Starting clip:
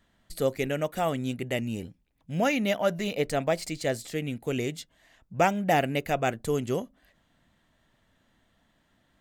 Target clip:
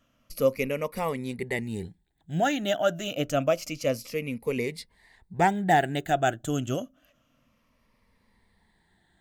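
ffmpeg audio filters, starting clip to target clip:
ffmpeg -i in.wav -af "afftfilt=real='re*pow(10,13/40*sin(2*PI*(0.89*log(max(b,1)*sr/1024/100)/log(2)-(-0.28)*(pts-256)/sr)))':imag='im*pow(10,13/40*sin(2*PI*(0.89*log(max(b,1)*sr/1024/100)/log(2)-(-0.28)*(pts-256)/sr)))':win_size=1024:overlap=0.75,volume=-1.5dB" out.wav

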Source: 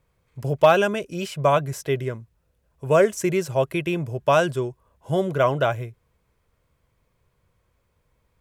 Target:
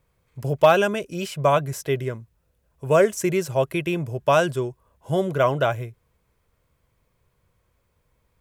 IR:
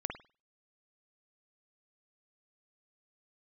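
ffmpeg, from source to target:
-af "highshelf=frequency=10000:gain=4.5"

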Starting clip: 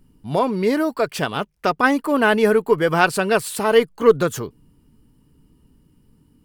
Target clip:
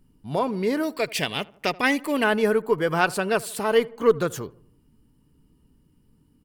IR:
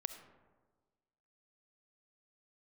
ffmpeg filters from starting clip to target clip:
-filter_complex "[0:a]asettb=1/sr,asplit=3[link_01][link_02][link_03];[link_01]atrim=end=0.834[link_04];[link_02]atrim=start=0.83:end=2.24,asetpts=PTS-STARTPTS,afade=type=in:duration=0.004:curve=qsin,afade=type=out:start_time=1.406:duration=0.004:curve=qsin,highshelf=frequency=1700:width_type=q:width=3:gain=6[link_05];[link_03]atrim=start=2.236[link_06];[link_04][link_05]acrossfade=duration=0.004:curve1=hsin:curve2=qsin[link_07];[link_07][link_06]acrossfade=duration=0.004:curve1=qsin:curve2=hsin,asplit=2[link_08][link_09];[link_09]adelay=80,lowpass=frequency=1500:poles=1,volume=-21dB,asplit=2[link_10][link_11];[link_11]adelay=80,lowpass=frequency=1500:poles=1,volume=0.54,asplit=2[link_12][link_13];[link_13]adelay=80,lowpass=frequency=1500:poles=1,volume=0.54,asplit=2[link_14][link_15];[link_15]adelay=80,lowpass=frequency=1500:poles=1,volume=0.54[link_16];[link_08][link_10][link_12][link_14][link_16]amix=inputs=5:normalize=0,volume=-5dB"

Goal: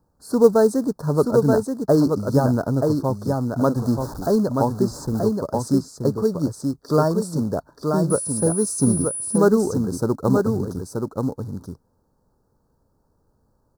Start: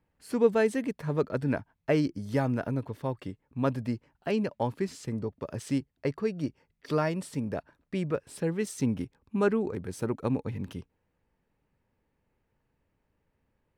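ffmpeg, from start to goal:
ffmpeg -i in.wav -filter_complex "[0:a]asettb=1/sr,asplit=3[link_01][link_02][link_03];[link_01]atrim=end=3.764[link_04];[link_02]atrim=start=3.76:end=4.36,asetpts=PTS-STARTPTS,afade=type=in:duration=0.004:curve=qsin,afade=type=out:start_time=0.596:duration=0.004:curve=qsin,aeval=exprs='val(0)+0.5*0.015*sgn(val(0))':channel_layout=same[link_05];[link_03]atrim=start=4.356[link_06];[link_04][link_05]acrossfade=duration=0.004:curve1=hsin:curve2=qsin[link_07];[link_07][link_06]acrossfade=duration=0.004:curve1=qsin:curve2=hsin,asplit=2[link_08][link_09];[link_09]acrusher=bits=3:mode=log:mix=0:aa=0.000001,volume=-5dB[link_10];[link_08][link_10]amix=inputs=2:normalize=0,asuperstop=centerf=2500:order=8:qfactor=0.84,aecho=1:1:929:0.596,asettb=1/sr,asplit=3[link_11][link_12][link_13];[link_11]atrim=end=8.104[link_14];[link_12]atrim=start=8.1:end=9.38,asetpts=PTS-STARTPTS,afade=type=in:duration=0.004:curve=qsin,afade=type=out:start_time=1.276:duration=0.004:curve=qsin,aeval=exprs='val(0)+0.0282*sin(2*PI*9800*n/s)':channel_layout=same[link_15];[link_13]atrim=start=9.376[link_16];[link_14][link_15]acrossfade=duration=0.004:curve1=hsin:curve2=qsin[link_17];[link_17][link_16]acrossfade=duration=0.004:curve1=qsin:curve2=hsin,volume=5dB" out.wav

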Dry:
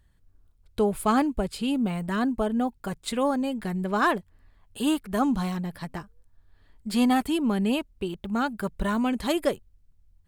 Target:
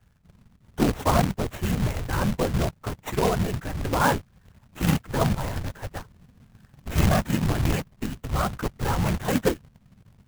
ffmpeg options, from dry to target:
ffmpeg -i in.wav -filter_complex "[0:a]lowpass=12000,acrossover=split=350|2500[link_01][link_02][link_03];[link_03]acrusher=samples=9:mix=1:aa=0.000001[link_04];[link_01][link_02][link_04]amix=inputs=3:normalize=0,afreqshift=-130,afftfilt=real='hypot(re,im)*cos(2*PI*random(0))':imag='hypot(re,im)*sin(2*PI*random(1))':win_size=512:overlap=0.75,acrusher=bits=2:mode=log:mix=0:aa=0.000001,volume=7dB" out.wav

